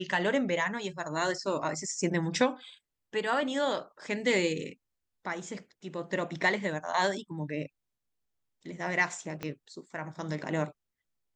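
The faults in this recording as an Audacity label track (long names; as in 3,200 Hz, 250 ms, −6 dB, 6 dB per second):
9.430000	9.430000	click −20 dBFS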